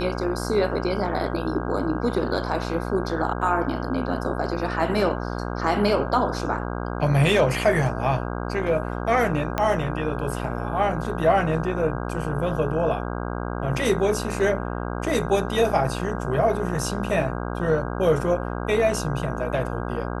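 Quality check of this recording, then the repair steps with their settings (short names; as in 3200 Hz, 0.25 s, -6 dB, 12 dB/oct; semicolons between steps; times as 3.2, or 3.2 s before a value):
buzz 60 Hz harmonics 27 -29 dBFS
9.58 pop -9 dBFS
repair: de-click; de-hum 60 Hz, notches 27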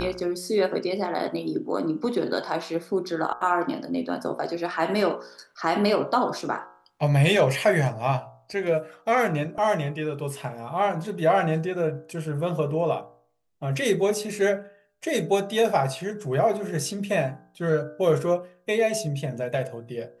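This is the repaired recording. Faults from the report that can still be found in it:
9.58 pop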